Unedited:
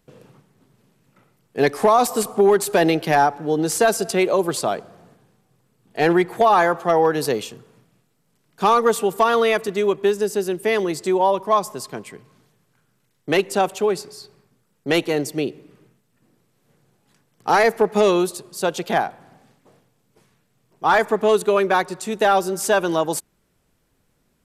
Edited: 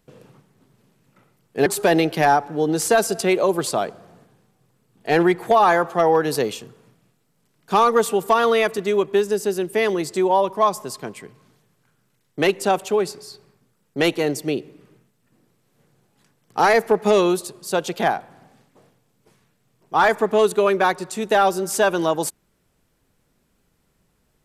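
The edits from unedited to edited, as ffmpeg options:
ffmpeg -i in.wav -filter_complex "[0:a]asplit=2[link_01][link_02];[link_01]atrim=end=1.662[link_03];[link_02]atrim=start=2.558[link_04];[link_03][link_04]acrossfade=duration=0.004:curve1=hsin:curve2=hsin" out.wav

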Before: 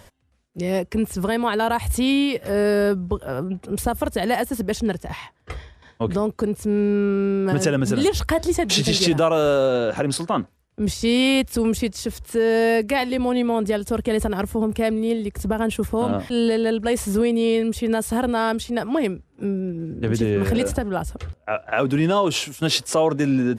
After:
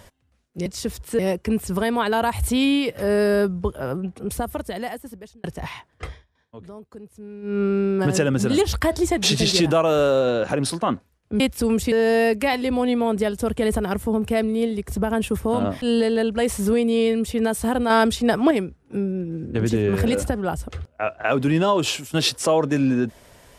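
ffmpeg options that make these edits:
ffmpeg -i in.wav -filter_complex "[0:a]asplit=10[link_01][link_02][link_03][link_04][link_05][link_06][link_07][link_08][link_09][link_10];[link_01]atrim=end=0.662[link_11];[link_02]atrim=start=11.868:end=12.402[link_12];[link_03]atrim=start=0.658:end=4.91,asetpts=PTS-STARTPTS,afade=type=out:start_time=2.702:duration=1.55[link_13];[link_04]atrim=start=4.91:end=5.73,asetpts=PTS-STARTPTS,afade=type=in:duration=0.004:curve=hsin,afade=type=out:start_time=0.61:duration=0.21:silence=0.125893[link_14];[link_05]atrim=start=5.73:end=6.89,asetpts=PTS-STARTPTS,volume=-18dB[link_15];[link_06]atrim=start=6.89:end=10.872,asetpts=PTS-STARTPTS,afade=type=in:duration=0.21:silence=0.125893[link_16];[link_07]atrim=start=11.348:end=11.872[link_17];[link_08]atrim=start=12.398:end=18.382[link_18];[link_09]atrim=start=18.378:end=18.992,asetpts=PTS-STARTPTS,volume=5dB[link_19];[link_10]atrim=start=18.988[link_20];[link_11][link_12]acrossfade=duration=0.004:curve1=hsin:curve2=hsin[link_21];[link_13][link_14][link_15][link_16]concat=n=4:v=0:a=1[link_22];[link_21][link_22]acrossfade=duration=0.004:curve1=hsin:curve2=hsin[link_23];[link_23][link_17]acrossfade=duration=0.004:curve1=hsin:curve2=hsin[link_24];[link_24][link_18]acrossfade=duration=0.004:curve1=hsin:curve2=hsin[link_25];[link_25][link_19]acrossfade=duration=0.004:curve1=hsin:curve2=hsin[link_26];[link_26][link_20]acrossfade=duration=0.004:curve1=hsin:curve2=hsin" out.wav

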